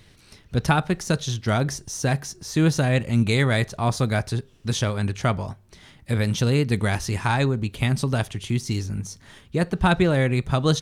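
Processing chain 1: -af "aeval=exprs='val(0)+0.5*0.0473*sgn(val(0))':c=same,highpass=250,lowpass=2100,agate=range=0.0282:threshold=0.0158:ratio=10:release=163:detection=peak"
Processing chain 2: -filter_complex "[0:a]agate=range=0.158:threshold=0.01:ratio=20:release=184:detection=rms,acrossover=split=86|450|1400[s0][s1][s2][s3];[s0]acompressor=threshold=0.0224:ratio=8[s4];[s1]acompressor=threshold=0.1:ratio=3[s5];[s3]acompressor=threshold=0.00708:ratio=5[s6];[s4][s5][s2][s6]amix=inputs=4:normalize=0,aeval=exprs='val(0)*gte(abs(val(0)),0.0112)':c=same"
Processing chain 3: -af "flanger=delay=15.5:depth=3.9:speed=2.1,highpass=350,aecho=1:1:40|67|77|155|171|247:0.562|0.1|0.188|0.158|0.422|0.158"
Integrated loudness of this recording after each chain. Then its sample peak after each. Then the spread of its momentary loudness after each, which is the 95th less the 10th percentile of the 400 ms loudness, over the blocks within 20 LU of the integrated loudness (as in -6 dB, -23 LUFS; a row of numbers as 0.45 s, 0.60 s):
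-26.5 LUFS, -25.5 LUFS, -28.5 LUFS; -4.5 dBFS, -8.0 dBFS, -9.0 dBFS; 11 LU, 8 LU, 11 LU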